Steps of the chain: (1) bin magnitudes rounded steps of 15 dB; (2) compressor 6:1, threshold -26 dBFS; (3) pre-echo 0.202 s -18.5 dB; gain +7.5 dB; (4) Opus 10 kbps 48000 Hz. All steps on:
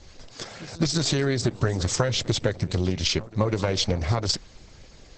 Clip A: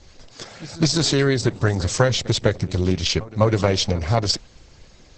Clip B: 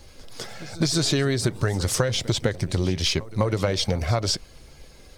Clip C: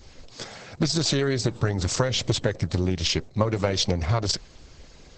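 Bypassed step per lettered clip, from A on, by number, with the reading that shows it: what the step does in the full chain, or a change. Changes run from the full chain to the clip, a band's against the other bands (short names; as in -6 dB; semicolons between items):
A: 2, mean gain reduction 2.5 dB; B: 4, momentary loudness spread change -5 LU; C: 3, momentary loudness spread change -5 LU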